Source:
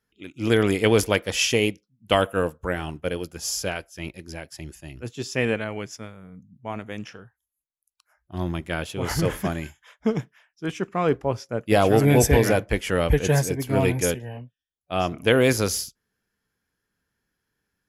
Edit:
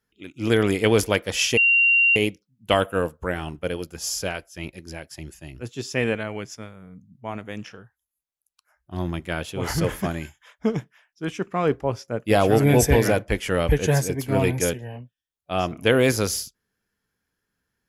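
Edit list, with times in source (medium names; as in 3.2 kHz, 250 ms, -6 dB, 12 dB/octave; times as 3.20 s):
1.57 s: add tone 2.76 kHz -14 dBFS 0.59 s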